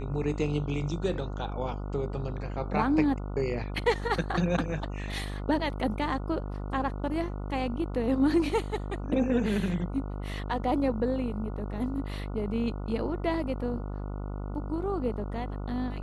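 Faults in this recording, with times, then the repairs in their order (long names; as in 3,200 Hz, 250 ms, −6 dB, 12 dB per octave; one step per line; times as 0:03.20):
mains buzz 50 Hz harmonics 29 −35 dBFS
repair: hum removal 50 Hz, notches 29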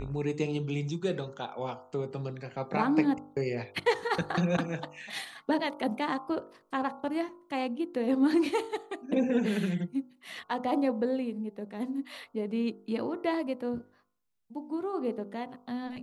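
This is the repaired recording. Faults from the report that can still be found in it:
none of them is left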